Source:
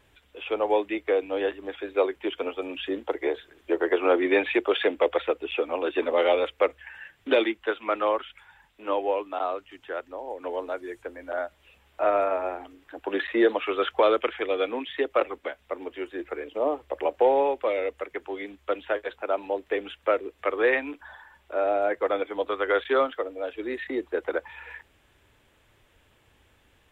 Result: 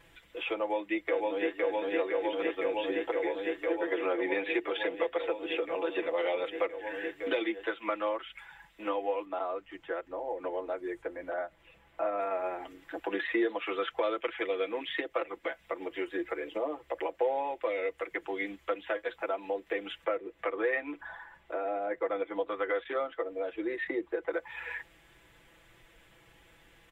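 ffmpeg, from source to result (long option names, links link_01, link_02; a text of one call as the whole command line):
ffmpeg -i in.wav -filter_complex "[0:a]asplit=2[link_01][link_02];[link_02]afade=type=in:start_time=0.6:duration=0.01,afade=type=out:start_time=1.6:duration=0.01,aecho=0:1:510|1020|1530|2040|2550|3060|3570|4080|4590|5100|5610|6120:0.944061|0.802452|0.682084|0.579771|0.492806|0.418885|0.356052|0.302644|0.257248|0.21866|0.185861|0.157982[link_03];[link_01][link_03]amix=inputs=2:normalize=0,asplit=3[link_04][link_05][link_06];[link_04]afade=type=out:start_time=9.24:duration=0.02[link_07];[link_05]highshelf=frequency=2300:gain=-10.5,afade=type=in:start_time=9.24:duration=0.02,afade=type=out:start_time=12.17:duration=0.02[link_08];[link_06]afade=type=in:start_time=12.17:duration=0.02[link_09];[link_07][link_08][link_09]amix=inputs=3:normalize=0,asettb=1/sr,asplit=3[link_10][link_11][link_12];[link_10]atrim=end=20.044[link_13];[link_11]atrim=start=20.04:end=24.33,asetpts=PTS-STARTPTS,afade=type=in:duration=0.004:curve=qsin,afade=type=out:start_time=4.286:duration=0.004:curve=qsin,highshelf=frequency=3000:gain=-10[link_14];[link_12]atrim=start=24.326[link_15];[link_13][link_14]acrossfade=duration=0.004:curve1=hsin:curve2=qsin[link_16];[link_16][link_15]acrossfade=duration=0.004:curve1=qsin:curve2=hsin,acompressor=threshold=-34dB:ratio=3,equalizer=frequency=2000:width_type=o:width=0.31:gain=5,aecho=1:1:6:0.78" out.wav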